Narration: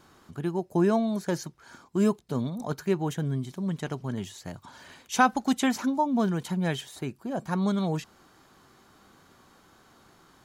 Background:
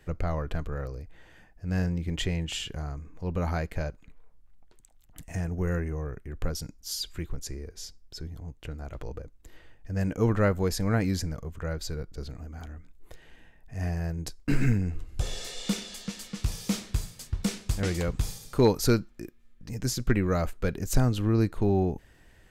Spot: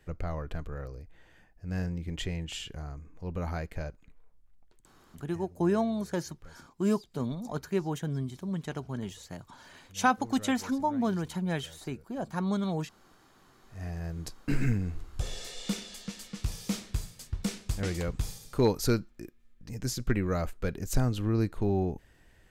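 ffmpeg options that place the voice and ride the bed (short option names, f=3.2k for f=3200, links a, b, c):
-filter_complex "[0:a]adelay=4850,volume=-3.5dB[a];[1:a]volume=13dB,afade=t=out:st=4.73:d=0.76:silence=0.149624,afade=t=in:st=13.33:d=0.91:silence=0.125893[b];[a][b]amix=inputs=2:normalize=0"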